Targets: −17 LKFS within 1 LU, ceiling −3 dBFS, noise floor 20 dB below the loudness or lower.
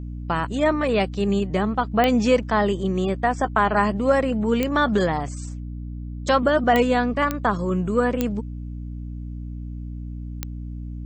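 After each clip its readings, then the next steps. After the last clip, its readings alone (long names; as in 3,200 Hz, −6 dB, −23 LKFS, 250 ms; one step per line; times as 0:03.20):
number of clicks 6; mains hum 60 Hz; hum harmonics up to 300 Hz; level of the hum −30 dBFS; integrated loudness −21.5 LKFS; sample peak −6.5 dBFS; target loudness −17.0 LKFS
→ click removal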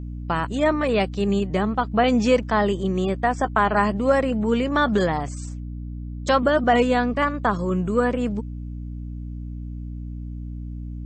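number of clicks 0; mains hum 60 Hz; hum harmonics up to 300 Hz; level of the hum −30 dBFS
→ mains-hum notches 60/120/180/240/300 Hz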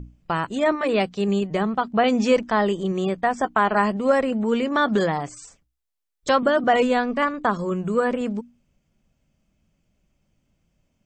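mains hum none found; integrated loudness −22.0 LKFS; sample peak −6.5 dBFS; target loudness −17.0 LKFS
→ level +5 dB
brickwall limiter −3 dBFS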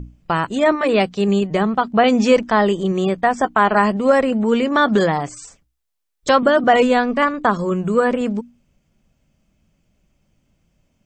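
integrated loudness −17.0 LKFS; sample peak −3.0 dBFS; background noise floor −69 dBFS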